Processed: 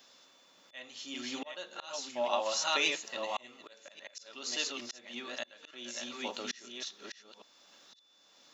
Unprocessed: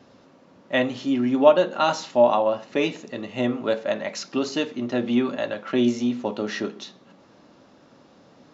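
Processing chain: chunks repeated in reverse 571 ms, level -3.5 dB; differentiator; slow attack 664 ms; whistle 3.5 kHz -73 dBFS; trim +8 dB

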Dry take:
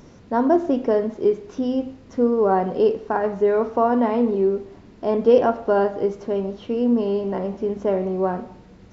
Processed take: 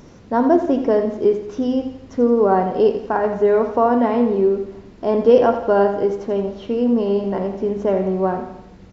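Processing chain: feedback delay 85 ms, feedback 48%, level -10.5 dB; trim +2.5 dB

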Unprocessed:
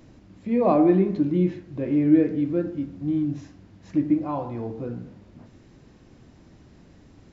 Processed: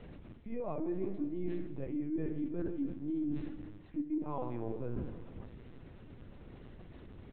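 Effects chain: LPC vocoder at 8 kHz pitch kept; feedback delay 163 ms, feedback 56%, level -18 dB; reverse; compression 16:1, threshold -32 dBFS, peak gain reduction 20.5 dB; reverse

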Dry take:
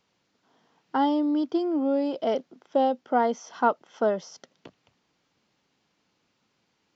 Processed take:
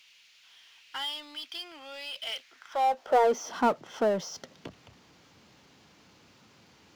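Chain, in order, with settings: high-pass sweep 2.6 kHz -> 71 Hz, 2.38–4.06 s; power-law waveshaper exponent 0.7; trim -5.5 dB

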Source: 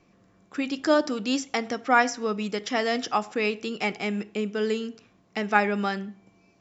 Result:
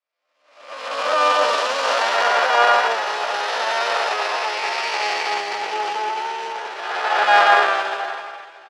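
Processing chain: spectral blur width 672 ms; harmony voices -12 st -8 dB, -3 st -1 dB, +12 st -3 dB; in parallel at -4 dB: companded quantiser 4-bit; on the sum: level rider gain up to 10.5 dB; high-pass 650 Hz 24 dB/octave; distance through air 110 m; echo that smears into a reverb 501 ms, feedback 43%, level -10.5 dB; dynamic bell 2.2 kHz, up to -4 dB, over -38 dBFS, Q 7.6; tempo 0.76×; three bands expanded up and down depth 100%; trim +2.5 dB

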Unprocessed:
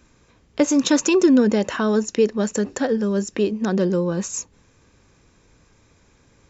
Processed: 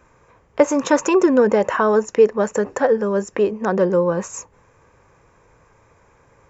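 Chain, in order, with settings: graphic EQ 125/250/500/1000/2000/4000 Hz +4/-5/+8/+10/+5/-9 dB; trim -2 dB

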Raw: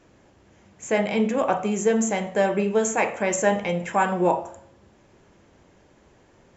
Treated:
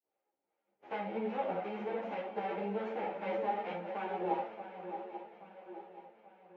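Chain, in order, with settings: formants flattened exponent 0.3; flange 1 Hz, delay 9.8 ms, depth 7.8 ms, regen +19%; expander -47 dBFS; in parallel at -8.5 dB: sample-and-hold 17×; on the sum: harmonic tremolo 2.6 Hz, depth 50%, crossover 680 Hz; peak limiter -19.5 dBFS, peak gain reduction 8.5 dB; cabinet simulation 310–2300 Hz, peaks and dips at 340 Hz +7 dB, 500 Hz +9 dB, 810 Hz +9 dB, 1.1 kHz -6 dB, 1.7 kHz -6 dB; shuffle delay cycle 831 ms, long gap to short 3:1, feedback 47%, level -11 dB; reverberation RT60 0.25 s, pre-delay 5 ms, DRR 4.5 dB; three-phase chorus; trim -7 dB

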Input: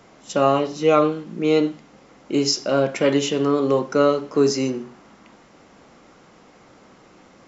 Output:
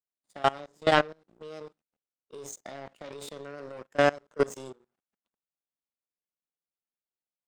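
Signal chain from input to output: power-law waveshaper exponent 2; formant shift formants +4 st; level held to a coarse grid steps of 22 dB; trim +2.5 dB

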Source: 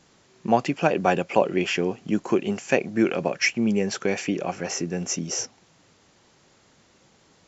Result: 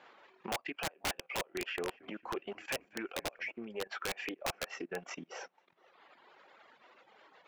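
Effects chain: tape echo 486 ms, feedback 29%, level -21.5 dB, low-pass 2.4 kHz; flange 0.29 Hz, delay 7.9 ms, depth 9 ms, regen -53%; compression 12:1, threshold -36 dBFS, peak gain reduction 19.5 dB; distance through air 480 m; level held to a coarse grid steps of 14 dB; high-pass 710 Hz 12 dB/octave; transient shaper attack -1 dB, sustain -5 dB; reverb removal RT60 1.4 s; 1.40–3.65 s: frequency-shifting echo 226 ms, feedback 54%, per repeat -48 Hz, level -23 dB; integer overflow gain 45.5 dB; loudspeaker Doppler distortion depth 0.13 ms; trim +18 dB

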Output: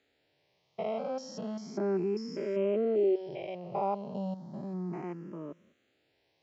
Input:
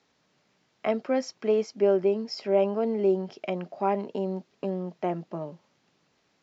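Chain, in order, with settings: spectrogram pixelated in time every 200 ms; barber-pole phaser +0.34 Hz

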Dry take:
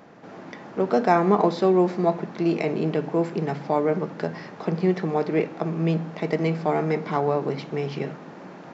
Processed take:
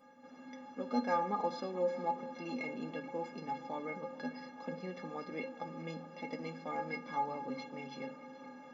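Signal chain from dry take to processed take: inharmonic resonator 250 Hz, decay 0.36 s, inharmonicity 0.03; tape echo 428 ms, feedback 76%, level -17 dB, low-pass 4.7 kHz; trim +3.5 dB

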